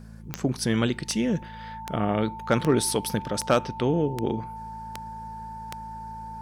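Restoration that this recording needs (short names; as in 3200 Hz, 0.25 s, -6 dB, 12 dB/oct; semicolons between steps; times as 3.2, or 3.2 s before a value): clip repair -11 dBFS; de-click; de-hum 54.8 Hz, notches 4; notch 890 Hz, Q 30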